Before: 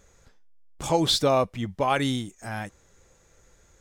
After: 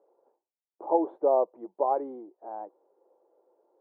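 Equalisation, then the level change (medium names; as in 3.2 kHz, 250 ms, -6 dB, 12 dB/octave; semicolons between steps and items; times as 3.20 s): elliptic band-pass 340–920 Hz, stop band 70 dB; 0.0 dB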